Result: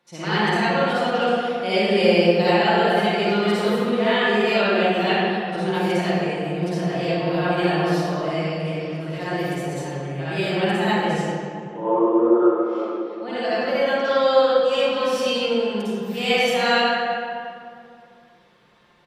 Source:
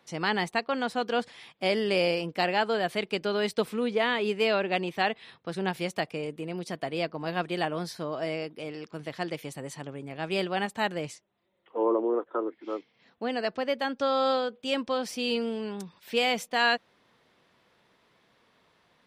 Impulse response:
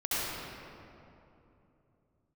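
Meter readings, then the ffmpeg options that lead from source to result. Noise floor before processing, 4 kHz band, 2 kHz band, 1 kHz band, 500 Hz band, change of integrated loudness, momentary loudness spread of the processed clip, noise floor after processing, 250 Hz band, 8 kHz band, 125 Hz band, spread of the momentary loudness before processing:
−67 dBFS, +7.0 dB, +7.5 dB, +8.5 dB, +9.0 dB, +8.5 dB, 10 LU, −51 dBFS, +10.5 dB, +5.0 dB, +13.0 dB, 12 LU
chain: -filter_complex "[0:a]aecho=1:1:5.7:0.49[link_01];[1:a]atrim=start_sample=2205,asetrate=57330,aresample=44100[link_02];[link_01][link_02]afir=irnorm=-1:irlink=0"

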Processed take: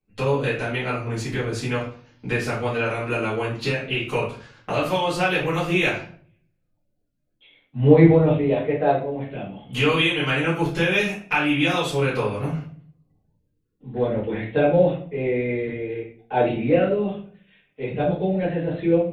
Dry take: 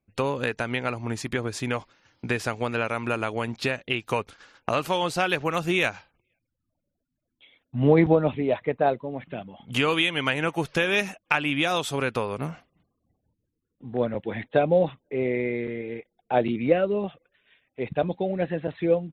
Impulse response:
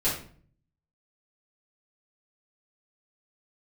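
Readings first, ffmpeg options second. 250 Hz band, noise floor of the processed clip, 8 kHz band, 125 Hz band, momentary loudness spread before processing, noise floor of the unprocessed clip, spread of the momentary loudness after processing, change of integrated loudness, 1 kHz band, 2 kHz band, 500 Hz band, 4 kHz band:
+4.5 dB, −71 dBFS, 0.0 dB, +6.5 dB, 11 LU, −81 dBFS, 13 LU, +3.5 dB, +1.5 dB, +2.5 dB, +3.5 dB, +2.0 dB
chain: -filter_complex "[0:a]equalizer=frequency=2700:width_type=o:width=0.77:gain=2.5[link_01];[1:a]atrim=start_sample=2205[link_02];[link_01][link_02]afir=irnorm=-1:irlink=0,volume=-8.5dB"

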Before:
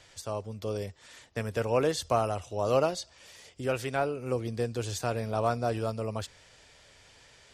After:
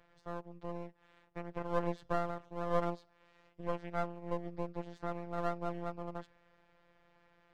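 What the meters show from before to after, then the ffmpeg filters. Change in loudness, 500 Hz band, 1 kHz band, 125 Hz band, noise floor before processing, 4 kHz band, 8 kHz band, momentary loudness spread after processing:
−8.5 dB, −9.5 dB, −6.5 dB, −10.5 dB, −58 dBFS, −17.5 dB, below −25 dB, 11 LU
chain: -af "lowpass=1400,afftfilt=real='hypot(re,im)*cos(PI*b)':imag='0':win_size=1024:overlap=0.75,aeval=exprs='max(val(0),0)':channel_layout=same,volume=-1.5dB"

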